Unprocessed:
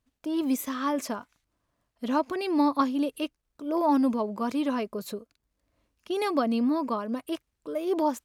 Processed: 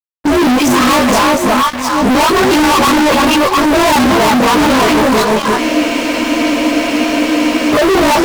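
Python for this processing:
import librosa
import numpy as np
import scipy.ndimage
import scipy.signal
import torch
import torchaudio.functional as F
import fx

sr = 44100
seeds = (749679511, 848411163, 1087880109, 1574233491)

p1 = fx.frame_reverse(x, sr, frame_ms=47.0)
p2 = scipy.signal.sosfilt(scipy.signal.butter(2, 6500.0, 'lowpass', fs=sr, output='sos'), p1)
p3 = fx.peak_eq(p2, sr, hz=960.0, db=9.0, octaves=1.5)
p4 = fx.dispersion(p3, sr, late='highs', ms=113.0, hz=990.0)
p5 = p4 + fx.echo_alternate(p4, sr, ms=350, hz=970.0, feedback_pct=51, wet_db=-6, dry=0)
p6 = fx.fuzz(p5, sr, gain_db=47.0, gate_db=-52.0)
p7 = fx.quant_companded(p6, sr, bits=4)
p8 = p6 + (p7 * 10.0 ** (-5.0 / 20.0))
y = fx.spec_freeze(p8, sr, seeds[0], at_s=5.62, hold_s=2.11)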